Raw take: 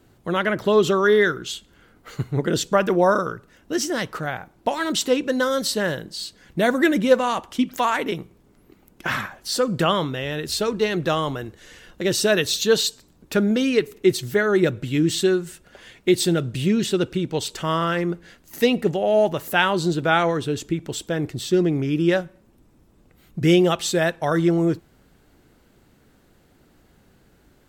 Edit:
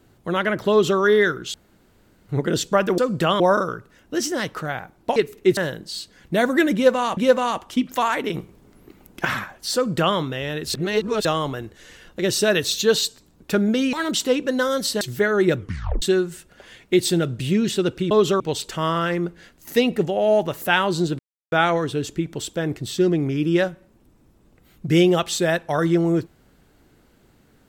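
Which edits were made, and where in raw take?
0.70–0.99 s: copy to 17.26 s
1.54–2.29 s: room tone
4.74–5.82 s: swap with 13.75–14.16 s
6.99–7.42 s: loop, 2 plays
8.16–9.07 s: gain +5 dB
9.57–9.99 s: copy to 2.98 s
10.56–11.07 s: reverse
14.73 s: tape stop 0.44 s
20.05 s: insert silence 0.33 s

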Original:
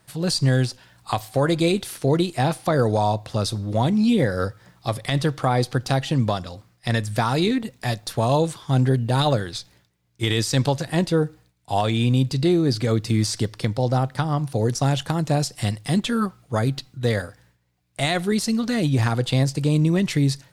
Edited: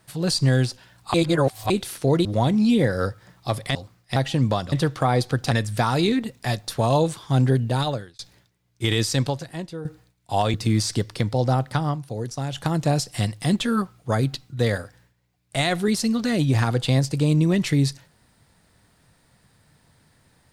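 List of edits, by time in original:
1.14–1.70 s: reverse
2.25–3.64 s: delete
5.14–5.93 s: swap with 6.49–6.90 s
9.01–9.58 s: fade out
10.48–11.24 s: fade out quadratic, to -14.5 dB
11.93–12.98 s: delete
14.30–15.09 s: dip -8 dB, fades 0.14 s

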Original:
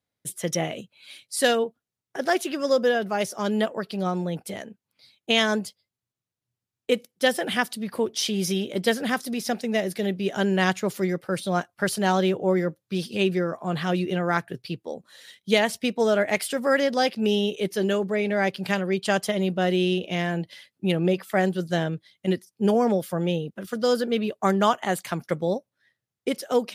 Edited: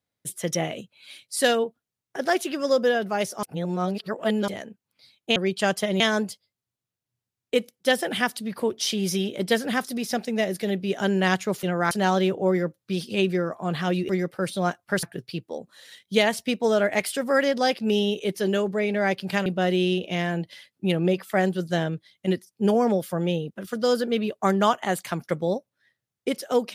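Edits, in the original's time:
3.43–4.48 s: reverse
10.99–11.93 s: swap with 14.11–14.39 s
18.82–19.46 s: move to 5.36 s

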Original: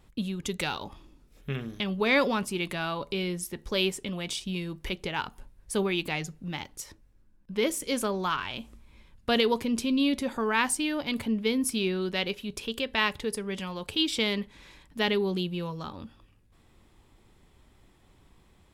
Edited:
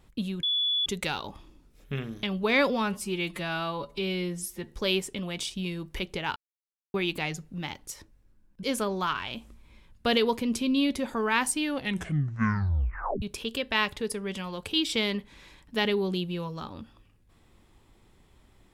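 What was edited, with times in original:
0.43 s: add tone 3.43 kHz -23.5 dBFS 0.43 s
2.27–3.61 s: stretch 1.5×
5.26–5.84 s: mute
7.53–7.86 s: delete
10.88 s: tape stop 1.57 s

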